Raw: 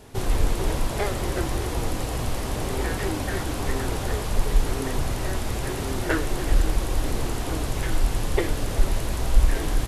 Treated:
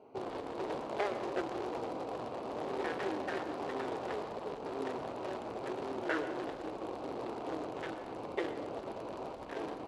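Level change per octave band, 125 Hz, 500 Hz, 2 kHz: -26.0 dB, -6.5 dB, -10.5 dB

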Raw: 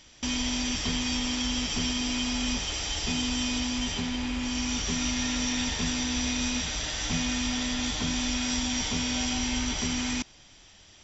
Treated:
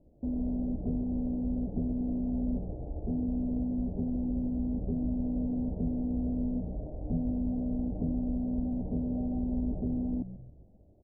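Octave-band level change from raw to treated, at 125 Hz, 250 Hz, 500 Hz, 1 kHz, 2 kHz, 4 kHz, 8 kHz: +1.5 dB, 0.0 dB, -0.5 dB, -14.5 dB, under -40 dB, under -40 dB, no reading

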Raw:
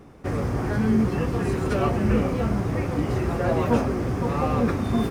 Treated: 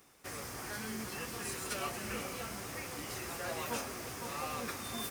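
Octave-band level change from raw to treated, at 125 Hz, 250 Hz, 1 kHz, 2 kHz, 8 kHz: -24.5 dB, -22.0 dB, -12.5 dB, -7.0 dB, +5.0 dB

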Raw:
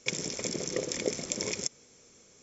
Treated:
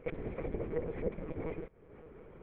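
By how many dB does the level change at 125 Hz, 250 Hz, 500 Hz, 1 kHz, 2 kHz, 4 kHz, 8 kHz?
+1.0 dB, -3.0 dB, -2.0 dB, -2.0 dB, -12.5 dB, under -30 dB, no reading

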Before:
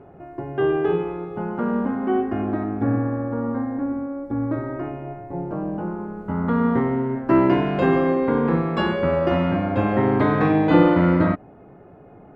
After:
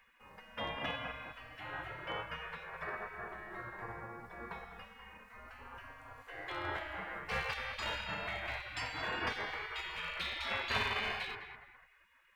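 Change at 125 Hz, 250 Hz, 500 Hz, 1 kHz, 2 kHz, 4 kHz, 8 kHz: -26.0 dB, -33.5 dB, -24.5 dB, -15.5 dB, -6.0 dB, 0.0 dB, no reading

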